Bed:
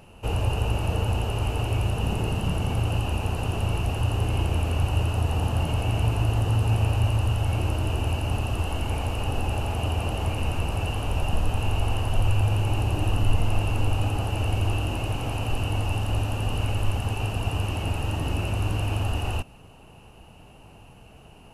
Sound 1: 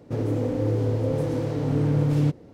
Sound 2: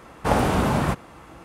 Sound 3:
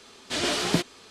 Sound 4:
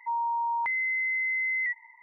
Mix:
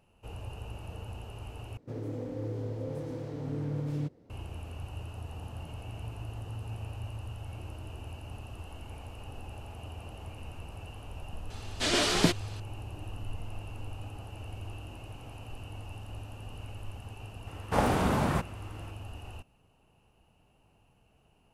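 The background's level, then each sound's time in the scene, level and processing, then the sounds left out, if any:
bed −17 dB
0:01.77: overwrite with 1 −12 dB
0:11.50: mix in 3 −0.5 dB
0:17.47: mix in 2 −6 dB
not used: 4

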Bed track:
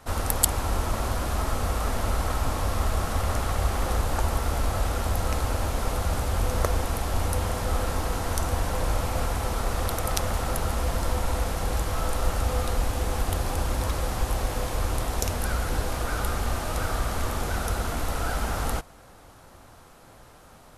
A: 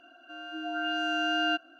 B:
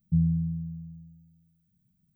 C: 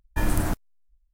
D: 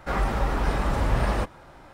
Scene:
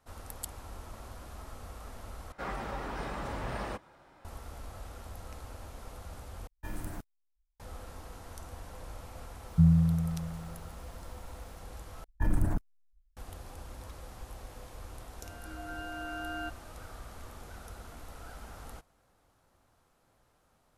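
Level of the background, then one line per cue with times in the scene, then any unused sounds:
bed track −19 dB
0:02.32: overwrite with D −9.5 dB + low-shelf EQ 110 Hz −9.5 dB
0:06.47: overwrite with C −15.5 dB
0:09.46: mix in B −1 dB + low-shelf EQ 110 Hz +8.5 dB
0:12.04: overwrite with C −3 dB + spectral envelope exaggerated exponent 1.5
0:14.93: mix in A −10.5 dB + high shelf with overshoot 1,800 Hz −6 dB, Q 1.5

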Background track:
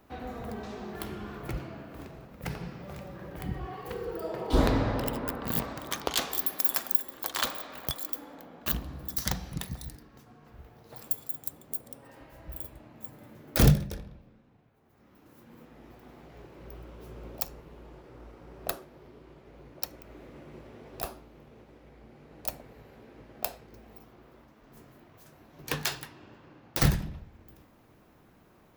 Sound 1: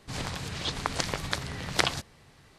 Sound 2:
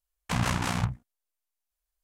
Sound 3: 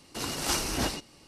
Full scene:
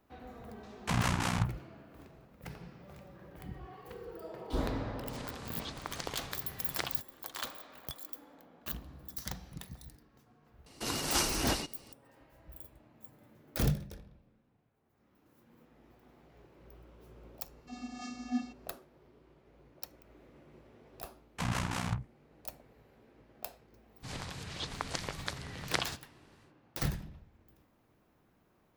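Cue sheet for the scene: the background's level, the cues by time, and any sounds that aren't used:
background track −10 dB
0:00.58: mix in 2 −3 dB
0:05.00: mix in 1 −12 dB
0:10.66: mix in 3 −1.5 dB
0:17.52: mix in 3 −6.5 dB + channel vocoder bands 32, square 246 Hz
0:21.09: mix in 2 −6.5 dB
0:23.95: mix in 1 −7.5 dB, fades 0.10 s

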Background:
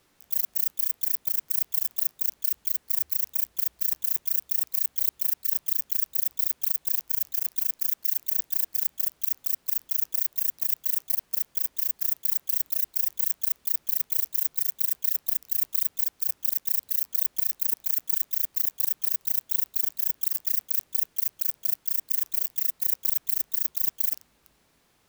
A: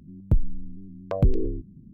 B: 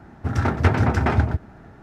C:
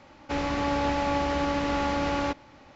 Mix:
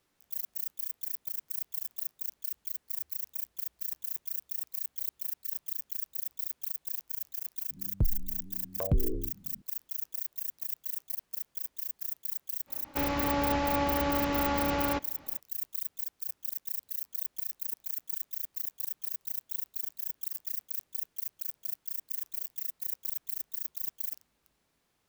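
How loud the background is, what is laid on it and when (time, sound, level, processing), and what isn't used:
background −10 dB
0:07.69: mix in A −7 dB
0:12.66: mix in C −2.5 dB, fades 0.05 s
not used: B

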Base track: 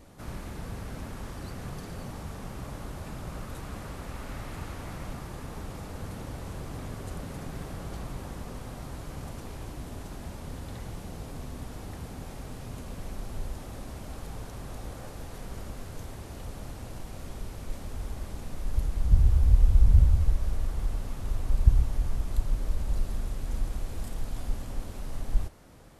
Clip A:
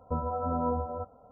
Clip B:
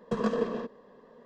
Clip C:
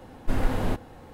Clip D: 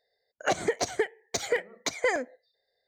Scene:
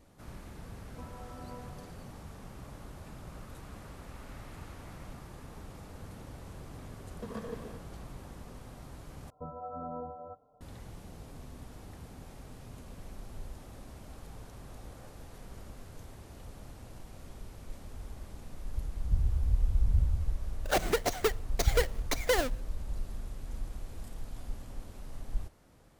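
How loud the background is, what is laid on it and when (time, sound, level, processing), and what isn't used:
base track −8 dB
0:00.87: mix in A −18 dB
0:07.11: mix in B −12.5 dB + dead-zone distortion −55 dBFS
0:09.30: overwrite with A −11 dB + comb filter 6.7 ms, depth 61%
0:20.25: mix in D −6 dB + each half-wave held at its own peak
not used: C

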